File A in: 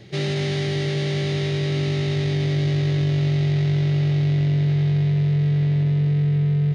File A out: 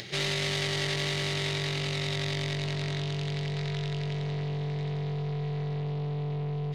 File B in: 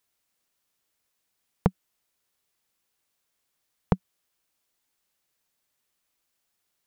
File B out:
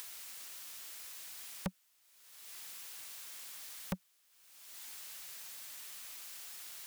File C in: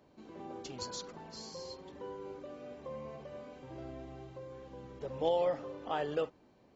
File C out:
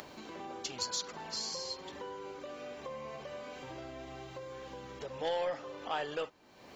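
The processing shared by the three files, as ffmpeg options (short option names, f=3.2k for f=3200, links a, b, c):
-af "acompressor=mode=upward:threshold=-35dB:ratio=2.5,aeval=exprs='(tanh(15.8*val(0)+0.15)-tanh(0.15))/15.8':c=same,tiltshelf=f=750:g=-7"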